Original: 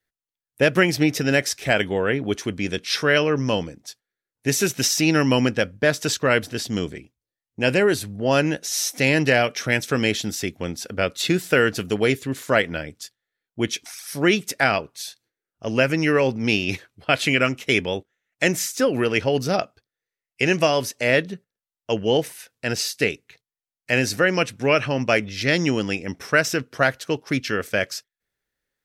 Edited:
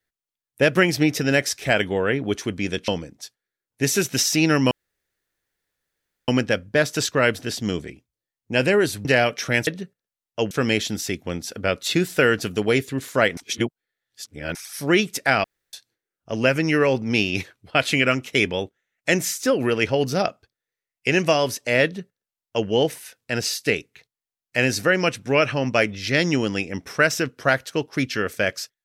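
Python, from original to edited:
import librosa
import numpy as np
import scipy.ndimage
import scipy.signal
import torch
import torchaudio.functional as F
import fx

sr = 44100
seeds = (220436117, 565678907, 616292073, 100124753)

y = fx.edit(x, sr, fx.cut(start_s=2.88, length_s=0.65),
    fx.insert_room_tone(at_s=5.36, length_s=1.57),
    fx.cut(start_s=8.13, length_s=1.1),
    fx.reverse_span(start_s=12.71, length_s=1.18),
    fx.room_tone_fill(start_s=14.78, length_s=0.29),
    fx.duplicate(start_s=21.18, length_s=0.84, to_s=9.85), tone=tone)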